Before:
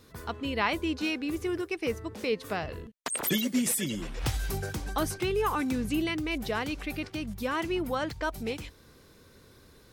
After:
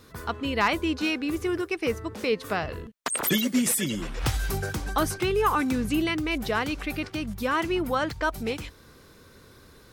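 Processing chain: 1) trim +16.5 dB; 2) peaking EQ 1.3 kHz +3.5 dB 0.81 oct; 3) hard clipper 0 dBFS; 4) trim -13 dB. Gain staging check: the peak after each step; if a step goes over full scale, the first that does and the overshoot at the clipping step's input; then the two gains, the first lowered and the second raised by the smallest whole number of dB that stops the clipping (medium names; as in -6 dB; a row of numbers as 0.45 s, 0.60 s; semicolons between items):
+3.5 dBFS, +5.0 dBFS, 0.0 dBFS, -13.0 dBFS; step 1, 5.0 dB; step 1 +11.5 dB, step 4 -8 dB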